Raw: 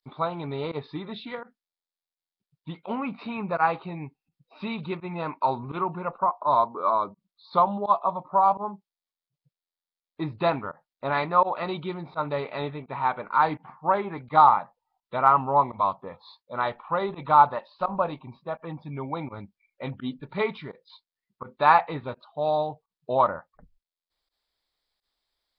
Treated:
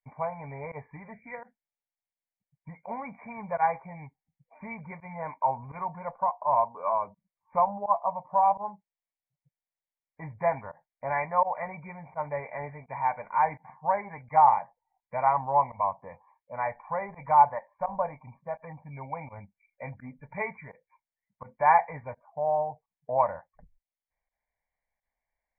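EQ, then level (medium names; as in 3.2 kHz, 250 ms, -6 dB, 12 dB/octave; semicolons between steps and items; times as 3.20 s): dynamic bell 200 Hz, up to -5 dB, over -42 dBFS, Q 0.78; brick-wall FIR low-pass 2.4 kHz; static phaser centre 1.3 kHz, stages 6; 0.0 dB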